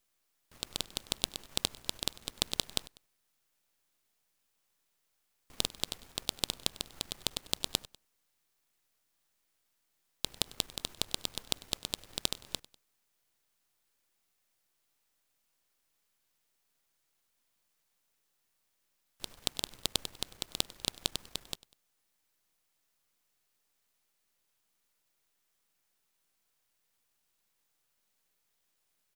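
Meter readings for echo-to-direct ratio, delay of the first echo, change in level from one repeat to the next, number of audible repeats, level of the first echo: -20.5 dB, 98 ms, -6.5 dB, 2, -21.5 dB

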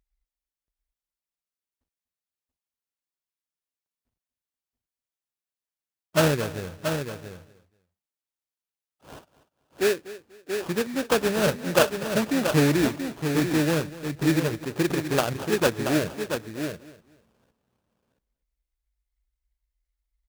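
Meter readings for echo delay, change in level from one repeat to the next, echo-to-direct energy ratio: 243 ms, no regular repeats, -6.5 dB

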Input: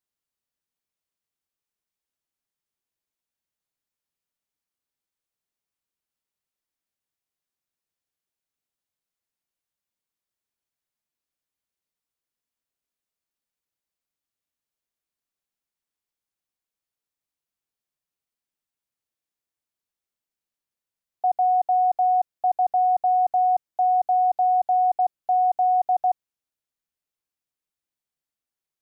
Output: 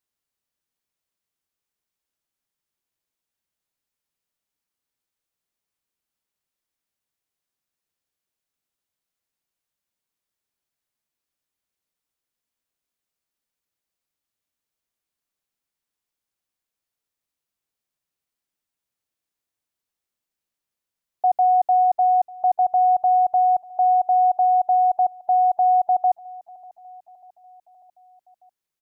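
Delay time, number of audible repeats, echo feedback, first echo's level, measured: 594 ms, 3, 57%, -22.0 dB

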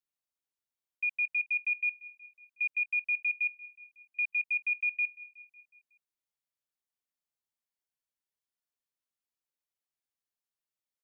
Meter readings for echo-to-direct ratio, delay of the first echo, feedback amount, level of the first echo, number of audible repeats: -18.5 dB, 184 ms, 60%, -20.5 dB, 4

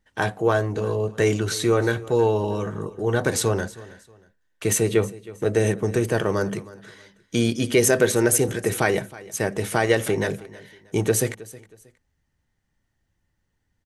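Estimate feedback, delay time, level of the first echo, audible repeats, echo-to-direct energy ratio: 29%, 317 ms, -19.5 dB, 2, -19.0 dB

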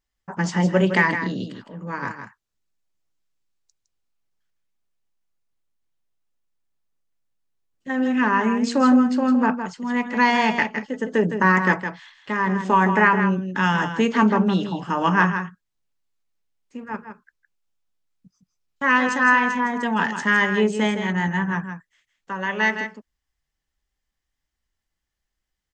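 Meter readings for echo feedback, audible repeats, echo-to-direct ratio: no regular repeats, 1, -8.5 dB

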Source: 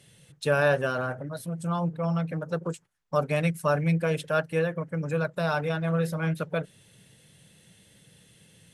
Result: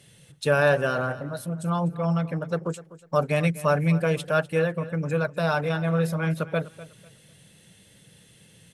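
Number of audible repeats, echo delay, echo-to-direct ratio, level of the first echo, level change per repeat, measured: 2, 249 ms, -16.5 dB, -17.0 dB, -11.5 dB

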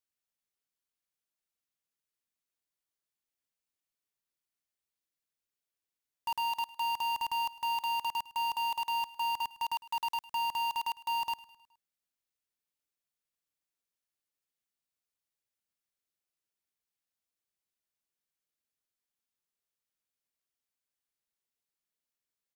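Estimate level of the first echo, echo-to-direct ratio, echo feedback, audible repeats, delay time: -19.5 dB, -18.0 dB, 52%, 3, 105 ms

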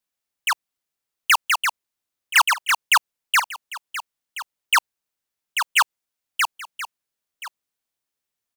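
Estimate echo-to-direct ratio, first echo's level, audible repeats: -14.5 dB, -14.5 dB, 1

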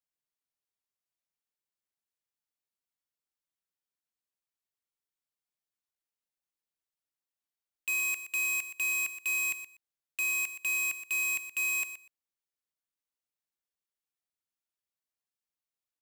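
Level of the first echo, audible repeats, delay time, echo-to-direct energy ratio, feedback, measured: -12.0 dB, 2, 122 ms, -12.0 dB, 16%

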